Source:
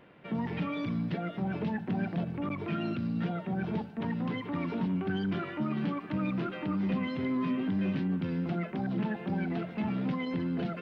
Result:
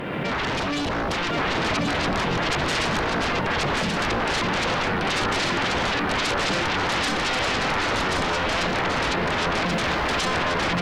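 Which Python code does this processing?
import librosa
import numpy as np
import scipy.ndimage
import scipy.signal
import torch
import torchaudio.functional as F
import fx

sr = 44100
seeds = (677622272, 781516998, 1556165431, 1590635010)

y = fx.spec_box(x, sr, start_s=0.58, length_s=0.33, low_hz=210.0, high_hz=2700.0, gain_db=-7)
y = fx.fold_sine(y, sr, drive_db=20, ceiling_db=-20.0)
y = fx.dmg_crackle(y, sr, seeds[0], per_s=560.0, level_db=-40.0, at=(9.65, 10.22), fade=0.02)
y = y + 10.0 ** (-3.0 / 20.0) * np.pad(y, (int(1083 * sr / 1000.0), 0))[:len(y)]
y = fx.pre_swell(y, sr, db_per_s=24.0)
y = y * 10.0 ** (-2.5 / 20.0)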